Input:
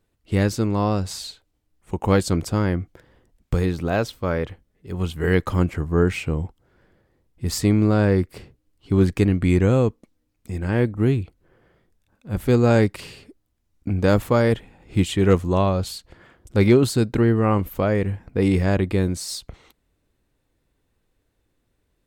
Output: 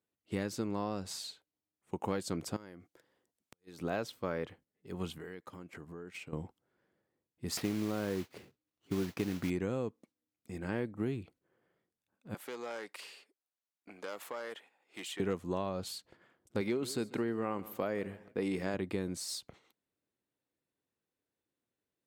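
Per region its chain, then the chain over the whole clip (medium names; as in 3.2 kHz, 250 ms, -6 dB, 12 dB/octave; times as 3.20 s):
2.56–3.81 s: tone controls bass -6 dB, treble +7 dB + compression 16:1, threshold -35 dBFS + inverted gate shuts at -22 dBFS, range -34 dB
5.18–6.33 s: peaking EQ 95 Hz -5 dB 1.6 oct + compression 20:1, threshold -31 dBFS + gate -39 dBFS, range -9 dB
7.57–9.50 s: modulation noise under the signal 16 dB + sliding maximum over 5 samples
12.34–15.20 s: self-modulated delay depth 0.088 ms + high-pass 670 Hz + compression 3:1, threshold -30 dBFS
16.61–18.74 s: high-pass 200 Hz 6 dB/octave + feedback delay 143 ms, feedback 38%, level -21 dB
whole clip: high-pass 170 Hz 12 dB/octave; gate -49 dBFS, range -7 dB; compression, threshold -21 dBFS; trim -9 dB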